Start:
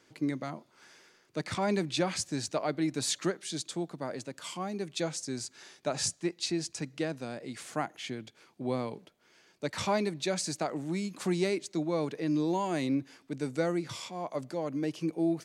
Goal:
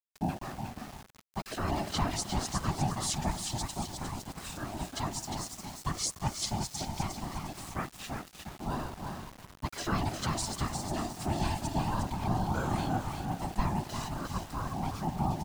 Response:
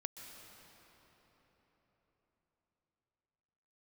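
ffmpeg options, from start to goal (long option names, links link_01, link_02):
-filter_complex "[0:a]asplit=5[link_01][link_02][link_03][link_04][link_05];[link_02]adelay=355,afreqshift=37,volume=-5.5dB[link_06];[link_03]adelay=710,afreqshift=74,volume=-15.7dB[link_07];[link_04]adelay=1065,afreqshift=111,volume=-25.8dB[link_08];[link_05]adelay=1420,afreqshift=148,volume=-36dB[link_09];[link_01][link_06][link_07][link_08][link_09]amix=inputs=5:normalize=0,asplit=2[link_10][link_11];[1:a]atrim=start_sample=2205,afade=type=out:start_time=0.42:duration=0.01,atrim=end_sample=18963,asetrate=26460,aresample=44100[link_12];[link_11][link_12]afir=irnorm=-1:irlink=0,volume=-2.5dB[link_13];[link_10][link_13]amix=inputs=2:normalize=0,aeval=exprs='val(0)*sin(2*PI*490*n/s)':channel_layout=same,afftfilt=real='hypot(re,im)*cos(2*PI*random(0))':imag='hypot(re,im)*sin(2*PI*random(1))':win_size=512:overlap=0.75,aeval=exprs='val(0)*gte(abs(val(0)),0.00473)':channel_layout=same,bass=frequency=250:gain=6,treble=frequency=4000:gain=4"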